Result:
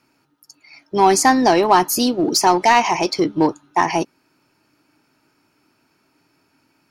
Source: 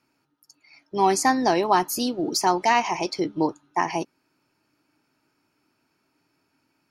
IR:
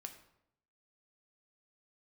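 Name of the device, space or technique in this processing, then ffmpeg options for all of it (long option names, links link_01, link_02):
parallel distortion: -filter_complex "[0:a]asplit=2[link_01][link_02];[link_02]asoftclip=type=hard:threshold=-22dB,volume=-6dB[link_03];[link_01][link_03]amix=inputs=2:normalize=0,volume=4.5dB"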